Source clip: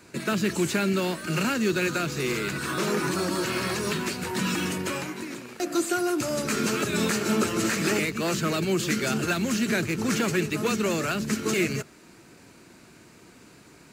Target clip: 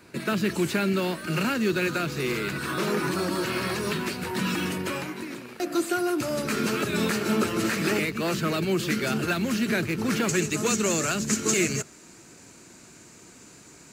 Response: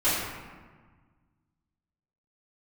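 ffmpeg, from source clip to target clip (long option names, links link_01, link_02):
-af "asetnsamples=nb_out_samples=441:pad=0,asendcmd='10.29 equalizer g 11',equalizer=frequency=7000:width_type=o:width=0.67:gain=-6"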